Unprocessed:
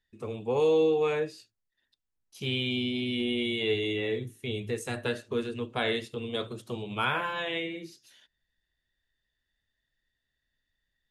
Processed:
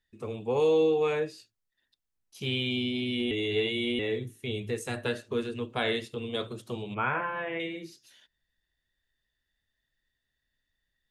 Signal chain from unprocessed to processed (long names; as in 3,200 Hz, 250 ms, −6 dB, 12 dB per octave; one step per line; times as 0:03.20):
0:03.31–0:03.99: reverse
0:06.94–0:07.60: inverse Chebyshev low-pass filter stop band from 4,500 Hz, stop band 40 dB